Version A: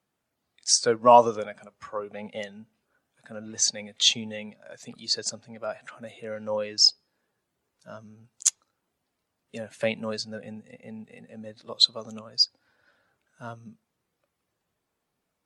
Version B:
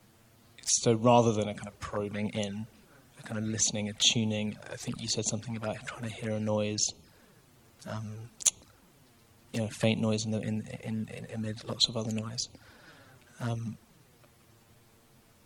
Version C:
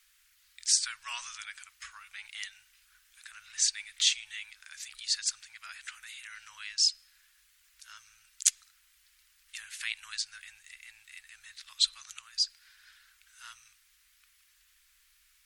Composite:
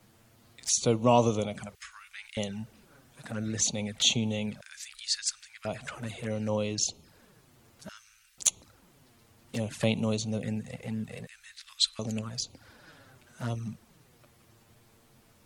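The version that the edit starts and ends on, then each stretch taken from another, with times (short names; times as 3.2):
B
1.75–2.37 from C
4.61–5.65 from C
7.89–8.38 from C
11.27–11.99 from C
not used: A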